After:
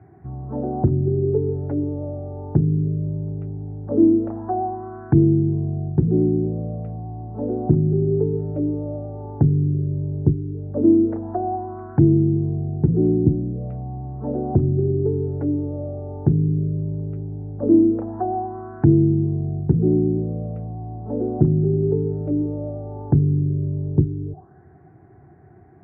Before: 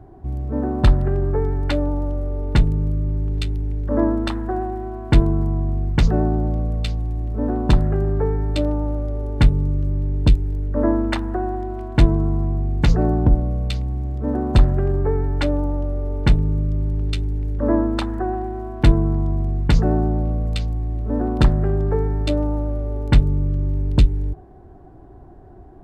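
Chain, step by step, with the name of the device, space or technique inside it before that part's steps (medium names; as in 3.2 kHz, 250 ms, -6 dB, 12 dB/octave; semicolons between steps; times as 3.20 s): envelope filter bass rig (touch-sensitive low-pass 340–2400 Hz down, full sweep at -15 dBFS; cabinet simulation 87–2100 Hz, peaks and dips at 92 Hz +3 dB, 150 Hz +8 dB, 270 Hz -4 dB, 560 Hz -8 dB, 1 kHz -6 dB); trim -3.5 dB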